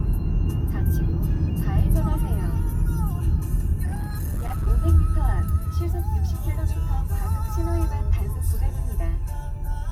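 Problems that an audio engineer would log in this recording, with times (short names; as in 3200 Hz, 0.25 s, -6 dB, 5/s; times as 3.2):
3.85–4.68 clipped -22.5 dBFS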